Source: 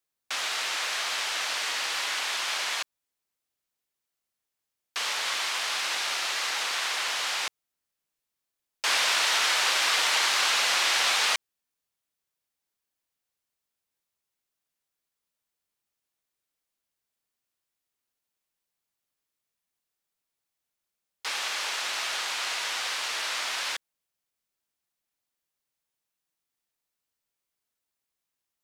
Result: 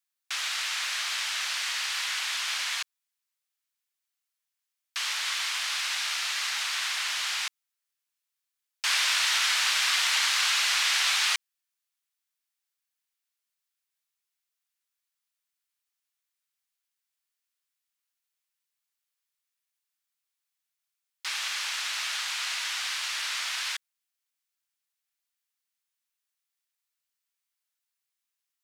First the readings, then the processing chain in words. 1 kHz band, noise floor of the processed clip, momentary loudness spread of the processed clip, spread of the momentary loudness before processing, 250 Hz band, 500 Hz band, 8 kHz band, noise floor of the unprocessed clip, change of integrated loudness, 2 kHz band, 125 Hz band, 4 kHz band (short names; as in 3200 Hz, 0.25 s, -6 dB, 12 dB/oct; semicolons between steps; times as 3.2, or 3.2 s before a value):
-4.5 dB, under -85 dBFS, 9 LU, 9 LU, under -20 dB, -13.5 dB, 0.0 dB, under -85 dBFS, -0.5 dB, -1.0 dB, n/a, 0.0 dB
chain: HPF 1300 Hz 12 dB/oct